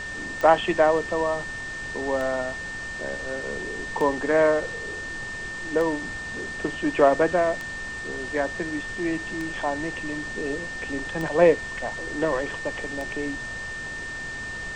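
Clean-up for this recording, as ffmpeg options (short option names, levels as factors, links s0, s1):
-af "adeclick=t=4,bandreject=f=1800:w=30,afftdn=nr=30:nf=-34"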